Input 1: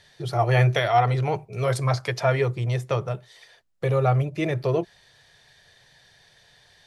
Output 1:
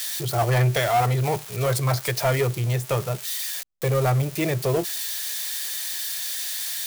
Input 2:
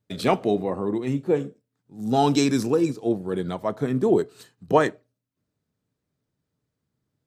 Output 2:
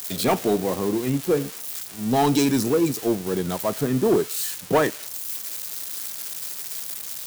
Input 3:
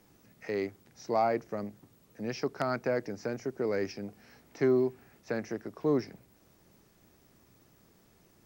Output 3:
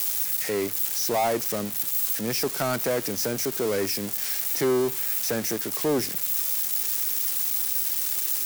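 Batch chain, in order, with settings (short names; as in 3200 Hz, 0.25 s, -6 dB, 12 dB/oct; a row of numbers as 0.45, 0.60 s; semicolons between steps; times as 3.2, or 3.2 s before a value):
switching spikes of -22.5 dBFS; sample leveller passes 2; match loudness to -24 LUFS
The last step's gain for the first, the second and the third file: -6.0, -5.5, -0.5 dB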